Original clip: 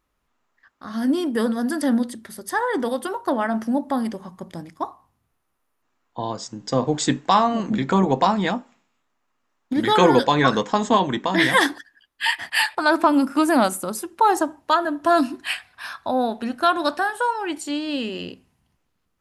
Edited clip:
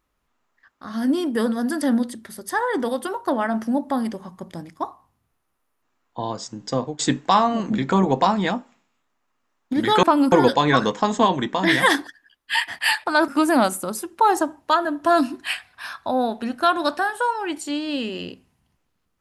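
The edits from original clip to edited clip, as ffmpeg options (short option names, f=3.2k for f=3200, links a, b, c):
-filter_complex "[0:a]asplit=5[a][b][c][d][e];[a]atrim=end=6.99,asetpts=PTS-STARTPTS,afade=t=out:st=6.57:d=0.42:c=qsin:silence=0.0668344[f];[b]atrim=start=6.99:end=10.032,asetpts=PTS-STARTPTS,afade=t=in:d=0.004:c=hsin:silence=0.0668344[g];[c]atrim=start=12.988:end=13.282[h];[d]atrim=start=10.028:end=12.992[i];[e]atrim=start=13.278[j];[f][g]concat=n=2:v=0:a=1[k];[k][h]acrossfade=d=0.004:c1=hsin:c2=hsin[l];[l][i]acrossfade=d=0.004:c1=hsin:c2=hsin[m];[m][j]acrossfade=d=0.004:c1=hsin:c2=hsin"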